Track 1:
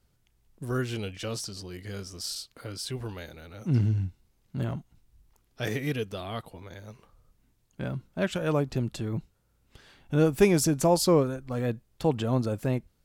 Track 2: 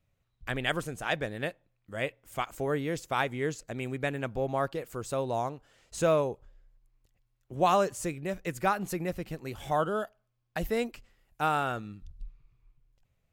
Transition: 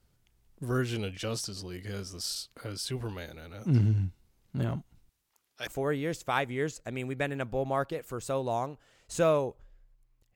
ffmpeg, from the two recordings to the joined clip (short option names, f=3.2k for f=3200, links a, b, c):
-filter_complex "[0:a]asettb=1/sr,asplit=3[a][b][c];[a]atrim=end=5.094[d];[b]atrim=start=5.09:end=5.67,asetpts=PTS-STARTPTS,afade=t=in:d=0.004:c=qsin,afade=t=out:st=0.576:d=0.004:c=qsin,highpass=f=1.2k:p=1[e];[c]atrim=start=5.666[f];[d][e]acrossfade=d=0.004:c1=hsin:c2=qsin[g];[g][f]acrossfade=d=0.004:c1=qsin:c2=hsin,apad=whole_dur=10.35,atrim=end=10.35,atrim=end=5.672[h];[1:a]atrim=start=2.498:end=7.18[i];[h][i]acrossfade=d=0.004:c1=hsin:c2=hsin"